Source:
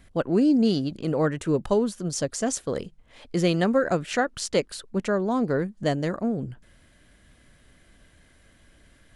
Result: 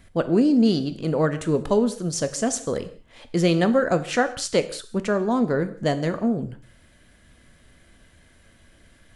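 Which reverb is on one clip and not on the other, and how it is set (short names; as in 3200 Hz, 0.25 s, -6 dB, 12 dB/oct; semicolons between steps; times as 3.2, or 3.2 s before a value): non-linear reverb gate 0.22 s falling, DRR 10 dB; gain +2 dB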